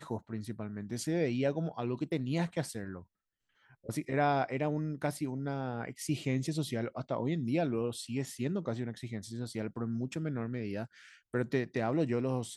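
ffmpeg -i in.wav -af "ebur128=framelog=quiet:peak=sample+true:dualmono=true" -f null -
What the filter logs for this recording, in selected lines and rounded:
Integrated loudness:
  I:         -31.8 LUFS
  Threshold: -42.1 LUFS
Loudness range:
  LRA:         3.1 LU
  Threshold: -52.3 LUFS
  LRA low:   -34.2 LUFS
  LRA high:  -31.1 LUFS
Sample peak:
  Peak:      -16.0 dBFS
True peak:
  Peak:      -16.0 dBFS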